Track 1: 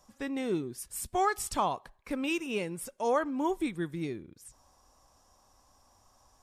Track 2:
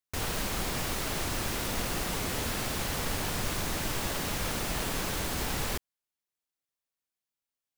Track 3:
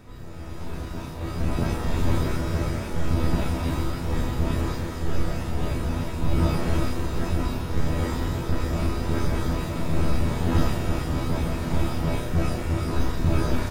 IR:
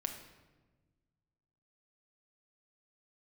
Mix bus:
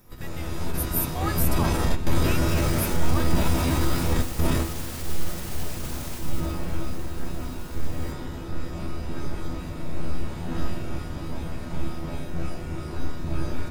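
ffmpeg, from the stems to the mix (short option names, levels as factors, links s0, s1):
-filter_complex "[0:a]highpass=1000,aexciter=amount=6.9:drive=9.2:freq=11000,volume=0.794,asplit=2[s0][s1];[1:a]alimiter=level_in=1.68:limit=0.0631:level=0:latency=1:release=73,volume=0.596,adelay=2350,volume=0.708,afade=t=out:st=6.05:d=0.56:silence=0.281838[s2];[2:a]volume=1.33,asplit=2[s3][s4];[s4]volume=0.282[s5];[s1]apad=whole_len=604427[s6];[s3][s6]sidechaingate=range=0.0224:threshold=0.00126:ratio=16:detection=peak[s7];[s2][s7]amix=inputs=2:normalize=0,highshelf=f=4500:g=8,alimiter=limit=0.15:level=0:latency=1:release=16,volume=1[s8];[3:a]atrim=start_sample=2205[s9];[s5][s9]afir=irnorm=-1:irlink=0[s10];[s0][s8][s10]amix=inputs=3:normalize=0"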